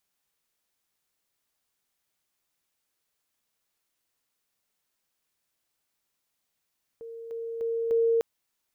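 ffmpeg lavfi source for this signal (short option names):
-f lavfi -i "aevalsrc='pow(10,(-38+6*floor(t/0.3))/20)*sin(2*PI*459*t)':d=1.2:s=44100"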